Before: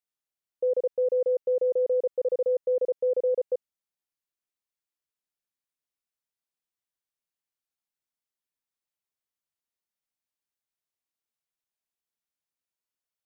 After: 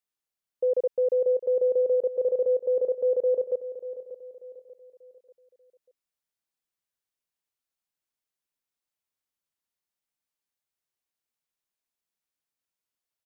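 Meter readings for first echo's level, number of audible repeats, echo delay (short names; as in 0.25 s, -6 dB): -13.5 dB, 3, 0.589 s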